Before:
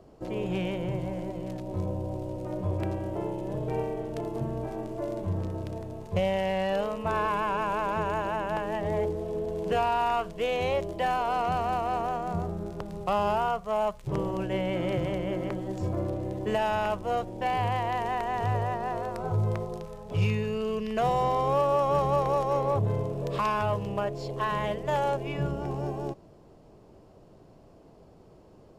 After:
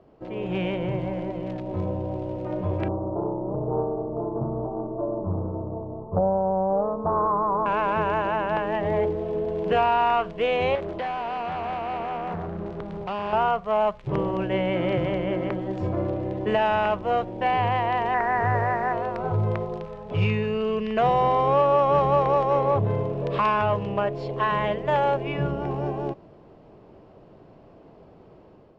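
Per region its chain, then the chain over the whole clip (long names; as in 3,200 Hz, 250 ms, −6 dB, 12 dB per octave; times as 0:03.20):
0:02.88–0:07.66: Butterworth low-pass 1,200 Hz 96 dB per octave + highs frequency-modulated by the lows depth 0.34 ms
0:10.75–0:13.33: downward compressor 3 to 1, threshold −30 dBFS + gain into a clipping stage and back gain 30.5 dB + highs frequency-modulated by the lows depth 0.4 ms
0:18.14–0:18.93: linear delta modulator 64 kbit/s, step −35.5 dBFS + high shelf with overshoot 2,400 Hz −9 dB, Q 3
whole clip: Chebyshev low-pass filter 2,700 Hz, order 2; low-shelf EQ 86 Hz −7 dB; automatic gain control gain up to 6 dB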